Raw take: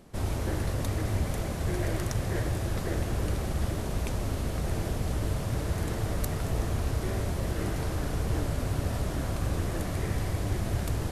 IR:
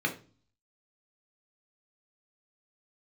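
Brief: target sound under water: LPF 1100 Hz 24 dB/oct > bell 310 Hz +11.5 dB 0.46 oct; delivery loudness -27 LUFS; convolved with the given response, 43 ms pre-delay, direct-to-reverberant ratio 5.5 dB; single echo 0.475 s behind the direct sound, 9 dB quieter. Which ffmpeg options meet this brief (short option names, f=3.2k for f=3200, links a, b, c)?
-filter_complex "[0:a]aecho=1:1:475:0.355,asplit=2[a][b];[1:a]atrim=start_sample=2205,adelay=43[c];[b][c]afir=irnorm=-1:irlink=0,volume=-14dB[d];[a][d]amix=inputs=2:normalize=0,lowpass=f=1.1k:w=0.5412,lowpass=f=1.1k:w=1.3066,equalizer=f=310:t=o:w=0.46:g=11.5,volume=0.5dB"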